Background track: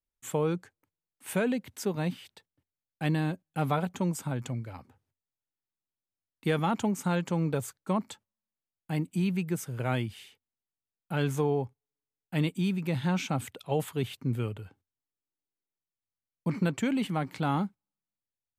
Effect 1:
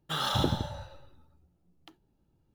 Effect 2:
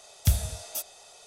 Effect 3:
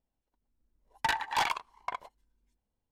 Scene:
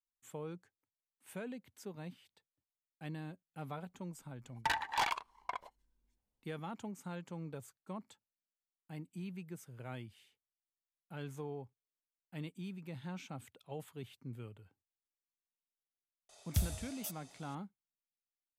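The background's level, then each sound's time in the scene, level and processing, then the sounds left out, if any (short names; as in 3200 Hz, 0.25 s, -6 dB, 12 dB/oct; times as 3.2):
background track -16 dB
3.61 add 3 -4.5 dB
16.29 add 2 -10 dB
not used: 1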